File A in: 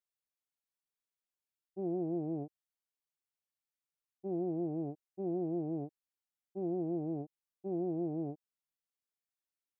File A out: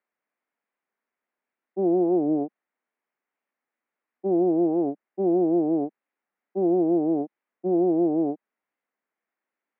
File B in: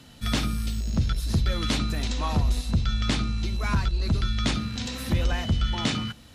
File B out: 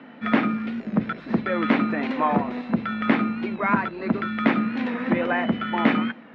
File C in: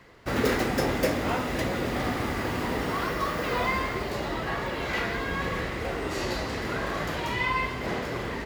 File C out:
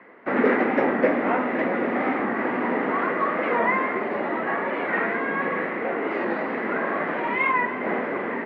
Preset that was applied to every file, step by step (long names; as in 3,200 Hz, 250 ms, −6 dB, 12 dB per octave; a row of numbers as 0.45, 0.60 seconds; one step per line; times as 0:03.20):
elliptic band-pass filter 220–2,100 Hz, stop band 80 dB
wow of a warped record 45 rpm, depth 100 cents
loudness normalisation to −24 LKFS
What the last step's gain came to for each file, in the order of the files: +15.5, +10.0, +6.0 decibels